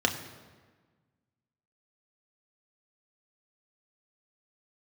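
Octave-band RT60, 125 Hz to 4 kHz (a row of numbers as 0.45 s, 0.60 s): 1.8 s, 1.7 s, 1.5 s, 1.4 s, 1.3 s, 1.0 s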